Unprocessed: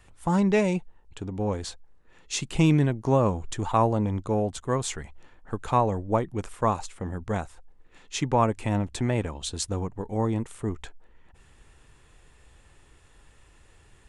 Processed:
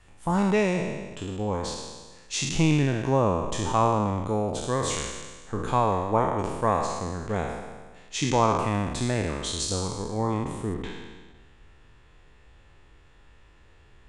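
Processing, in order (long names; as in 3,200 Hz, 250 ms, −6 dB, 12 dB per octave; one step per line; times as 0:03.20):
peak hold with a decay on every bin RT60 1.40 s
low-pass filter 9,400 Hz 12 dB per octave, from 0:10.74 4,400 Hz
level −2 dB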